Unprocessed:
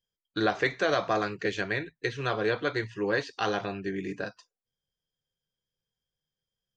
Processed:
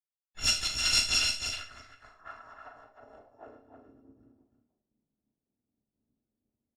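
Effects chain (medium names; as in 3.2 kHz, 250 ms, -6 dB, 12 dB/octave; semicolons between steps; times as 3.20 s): bit-reversed sample order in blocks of 256 samples; resonant high shelf 3.6 kHz +12 dB, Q 1.5; reverse; upward compressor, threshold -22 dBFS; reverse; band-pass sweep 2.5 kHz -> 220 Hz, 1.26–4.31 s; valve stage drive 26 dB, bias 0.55; level-controlled noise filter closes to 770 Hz, open at -26 dBFS; on a send: delay 313 ms -5 dB; on the sum: Schroeder reverb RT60 0.4 s, combs from 26 ms, DRR 5 dB; harmony voices +4 st -8 dB; three bands expanded up and down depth 40%; trim +6 dB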